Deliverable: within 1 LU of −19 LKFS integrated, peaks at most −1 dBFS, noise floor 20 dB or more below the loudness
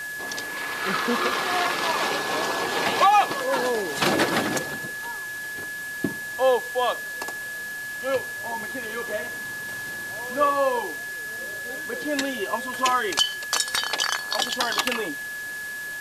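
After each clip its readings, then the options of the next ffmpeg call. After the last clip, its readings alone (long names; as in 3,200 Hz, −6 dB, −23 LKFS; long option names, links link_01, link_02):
interfering tone 1,700 Hz; level of the tone −31 dBFS; background noise floor −34 dBFS; target noise floor −45 dBFS; integrated loudness −25.0 LKFS; sample peak −8.0 dBFS; target loudness −19.0 LKFS
→ -af "bandreject=frequency=1700:width=30"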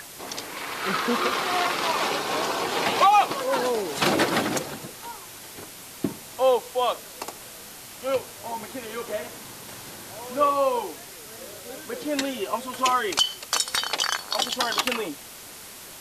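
interfering tone none found; background noise floor −43 dBFS; target noise floor −45 dBFS
→ -af "afftdn=noise_reduction=6:noise_floor=-43"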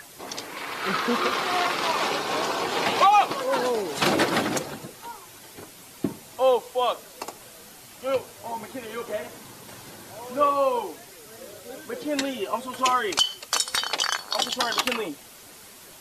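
background noise floor −47 dBFS; integrated loudness −25.0 LKFS; sample peak −8.0 dBFS; target loudness −19.0 LKFS
→ -af "volume=6dB"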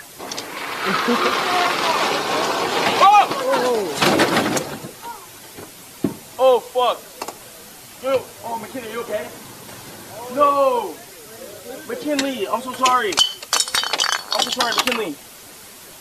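integrated loudness −19.0 LKFS; sample peak −2.0 dBFS; background noise floor −41 dBFS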